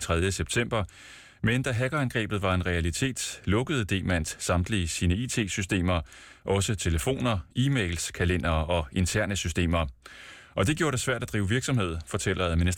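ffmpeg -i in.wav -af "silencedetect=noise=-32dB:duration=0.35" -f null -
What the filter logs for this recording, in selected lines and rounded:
silence_start: 0.84
silence_end: 1.44 | silence_duration: 0.59
silence_start: 6.02
silence_end: 6.48 | silence_duration: 0.46
silence_start: 10.06
silence_end: 10.57 | silence_duration: 0.51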